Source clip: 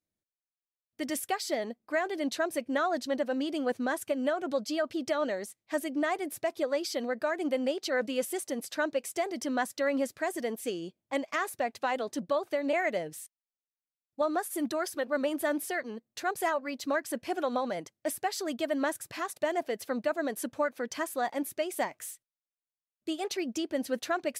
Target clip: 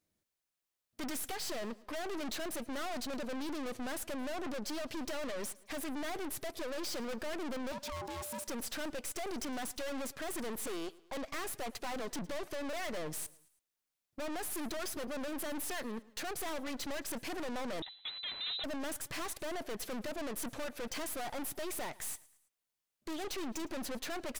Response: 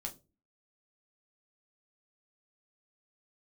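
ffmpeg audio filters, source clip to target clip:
-filter_complex "[0:a]asettb=1/sr,asplit=3[link_01][link_02][link_03];[link_01]atrim=end=10.674[link_04];[link_02]atrim=start=10.67:end=11.17,asetpts=PTS-STARTPTS,afade=type=in:duration=0.004:curve=qsin,afade=type=out:start_time=0.496:duration=0.004:curve=qsin,highpass=frequency=370:width=0.5412,highpass=frequency=370:width=1.3066[link_05];[link_03]atrim=start=11.166[link_06];[link_04][link_05]acrossfade=duration=0.004:curve1=hsin:curve2=qsin[link_07];[link_07][link_06]acrossfade=duration=0.004:curve1=qsin:curve2=hsin,alimiter=limit=-24dB:level=0:latency=1:release=388,aeval=exprs='(tanh(316*val(0)+0.75)-tanh(0.75))/316':channel_layout=same,asettb=1/sr,asplit=3[link_08][link_09][link_10];[link_08]atrim=end=7.724[link_11];[link_09]atrim=start=7.72:end=8.45,asetpts=PTS-STARTPTS,afade=type=in:duration=0.004:curve=qsin,afade=type=out:start_time=0.726:duration=0.004:curve=qsin,aeval=exprs='val(0)*sin(2*PI*590*n/s)':channel_layout=same[link_12];[link_10]atrim=start=8.446[link_13];[link_11][link_12]acrossfade=duration=0.004:curve1=hsin:curve2=qsin[link_14];[link_14][link_13]acrossfade=duration=0.004:curve1=qsin:curve2=hsin,aecho=1:1:109|218|327:0.0841|0.0412|0.0202,asettb=1/sr,asplit=3[link_15][link_16][link_17];[link_15]atrim=end=17.824[link_18];[link_16]atrim=start=17.82:end=18.64,asetpts=PTS-STARTPTS,afade=type=in:duration=0.004:curve=qsin,afade=type=out:start_time=0.816:duration=0.004:curve=qsin,lowpass=frequency=3400:width_type=q:width=0.5098,lowpass=frequency=3400:width_type=q:width=0.6013,lowpass=frequency=3400:width_type=q:width=0.9,lowpass=frequency=3400:width_type=q:width=2.563,afreqshift=-4000[link_19];[link_17]atrim=start=18.636[link_20];[link_18][link_19]acrossfade=duration=0.004:curve1=hsin:curve2=qsin[link_21];[link_21][link_20]acrossfade=duration=0.004:curve1=qsin:curve2=hsin,volume=11.5dB"

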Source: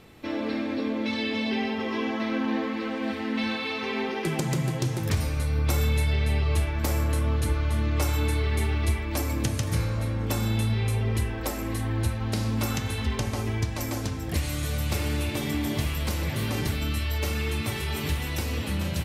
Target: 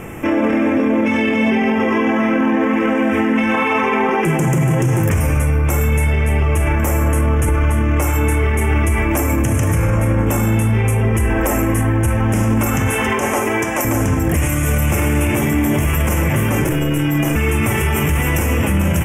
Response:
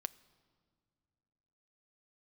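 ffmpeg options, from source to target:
-filter_complex "[0:a]asettb=1/sr,asplit=3[link_01][link_02][link_03];[link_01]atrim=end=3.544[link_04];[link_02]atrim=start=3.54:end=4.22,asetpts=PTS-STARTPTS,afade=type=in:duration=0.004:curve=qsin,afade=type=out:start_time=0.676:duration=0.004:curve=qsin,equalizer=frequency=1000:width=1.8:gain=8[link_05];[link_03]atrim=start=4.216[link_06];[link_04][link_05]acrossfade=duration=0.004:curve1=hsin:curve2=qsin[link_07];[link_07][link_06]acrossfade=duration=0.004:curve1=qsin:curve2=hsin,asettb=1/sr,asplit=3[link_08][link_09][link_10];[link_08]atrim=end=12.904[link_11];[link_09]atrim=start=12.9:end=13.85,asetpts=PTS-STARTPTS,afade=type=in:duration=0.004:curve=qsin,afade=type=out:start_time=0.946:duration=0.004:curve=qsin,highpass=350[link_12];[link_10]atrim=start=13.846[link_13];[link_11][link_12]acrossfade=duration=0.004:curve1=hsin:curve2=qsin[link_14];[link_14][link_13]acrossfade=duration=0.004:curve1=qsin:curve2=hsin,asettb=1/sr,asplit=3[link_15][link_16][link_17];[link_15]atrim=end=16.644[link_18];[link_16]atrim=start=16.64:end=17.36,asetpts=PTS-STARTPTS,afade=type=in:duration=0.004:curve=qsin,afade=type=out:start_time=0.716:duration=0.004:curve=qsin,aeval=exprs='val(0)*sin(2*PI*220*n/s)':channel_layout=same[link_19];[link_17]atrim=start=17.356[link_20];[link_18][link_19]acrossfade=duration=0.004:curve1=hsin:curve2=qsin[link_21];[link_21][link_20]acrossfade=duration=0.004:curve1=qsin:curve2=hsin,asuperstop=centerf=4200:order=4:qfactor=1.1[link_22];[1:a]atrim=start_sample=2205[link_23];[link_22][link_23]afir=irnorm=-1:irlink=0,alimiter=level_in=30.5dB:limit=-1dB:release=50:level=0:latency=1,volume=-7.5dB"

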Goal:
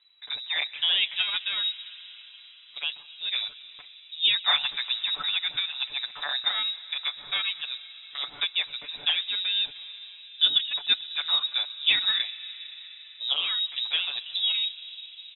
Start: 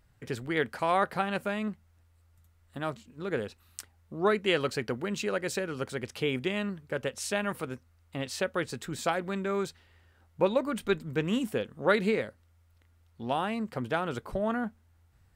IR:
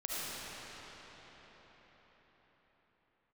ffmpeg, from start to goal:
-filter_complex "[0:a]asplit=2[link_01][link_02];[1:a]atrim=start_sample=2205,lowpass=2200,adelay=127[link_03];[link_02][link_03]afir=irnorm=-1:irlink=0,volume=-19dB[link_04];[link_01][link_04]amix=inputs=2:normalize=0,lowpass=frequency=3400:width_type=q:width=0.5098,lowpass=frequency=3400:width_type=q:width=0.6013,lowpass=frequency=3400:width_type=q:width=0.9,lowpass=frequency=3400:width_type=q:width=2.563,afreqshift=-4000,aecho=1:1:6.9:0.8"

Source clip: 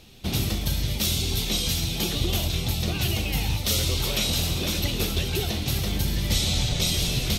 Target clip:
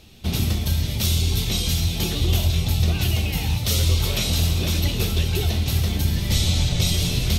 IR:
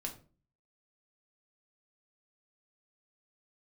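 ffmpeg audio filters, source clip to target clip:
-filter_complex "[0:a]asplit=2[link_01][link_02];[link_02]equalizer=frequency=83:width_type=o:width=1.1:gain=12[link_03];[1:a]atrim=start_sample=2205[link_04];[link_03][link_04]afir=irnorm=-1:irlink=0,volume=-2dB[link_05];[link_01][link_05]amix=inputs=2:normalize=0,volume=-3.5dB"

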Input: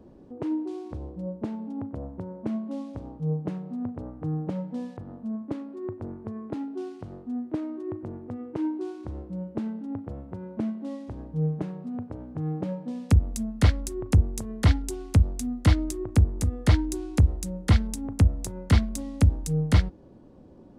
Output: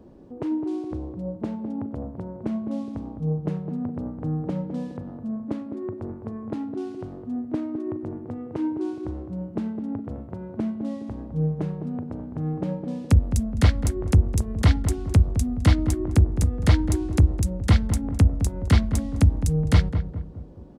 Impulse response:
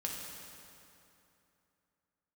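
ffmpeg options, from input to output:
-filter_complex "[0:a]asplit=2[link_01][link_02];[link_02]adelay=209,lowpass=frequency=870:poles=1,volume=-7.5dB,asplit=2[link_03][link_04];[link_04]adelay=209,lowpass=frequency=870:poles=1,volume=0.47,asplit=2[link_05][link_06];[link_06]adelay=209,lowpass=frequency=870:poles=1,volume=0.47,asplit=2[link_07][link_08];[link_08]adelay=209,lowpass=frequency=870:poles=1,volume=0.47,asplit=2[link_09][link_10];[link_10]adelay=209,lowpass=frequency=870:poles=1,volume=0.47[link_11];[link_01][link_03][link_05][link_07][link_09][link_11]amix=inputs=6:normalize=0,volume=2dB"

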